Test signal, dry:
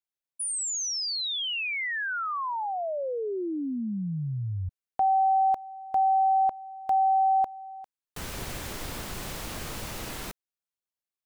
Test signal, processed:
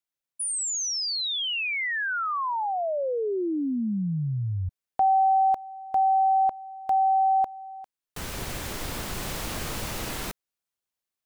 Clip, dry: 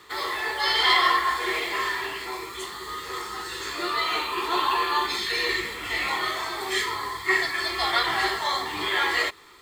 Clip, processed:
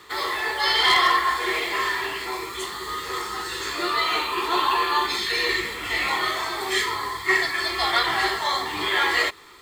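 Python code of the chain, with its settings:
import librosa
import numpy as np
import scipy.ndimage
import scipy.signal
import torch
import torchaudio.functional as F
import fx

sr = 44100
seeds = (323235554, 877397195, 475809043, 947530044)

p1 = fx.rider(x, sr, range_db=4, speed_s=2.0)
p2 = x + F.gain(torch.from_numpy(p1), -2.0).numpy()
p3 = np.clip(10.0 ** (8.5 / 20.0) * p2, -1.0, 1.0) / 10.0 ** (8.5 / 20.0)
y = F.gain(torch.from_numpy(p3), -3.0).numpy()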